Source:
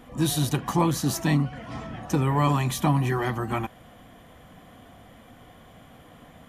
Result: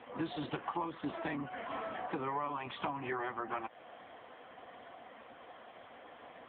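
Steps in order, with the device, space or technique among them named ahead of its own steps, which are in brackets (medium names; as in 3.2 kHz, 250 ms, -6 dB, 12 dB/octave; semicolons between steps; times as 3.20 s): voicemail (band-pass 440–3100 Hz; compression 10:1, threshold -36 dBFS, peak gain reduction 15.5 dB; trim +3.5 dB; AMR-NB 6.7 kbps 8 kHz)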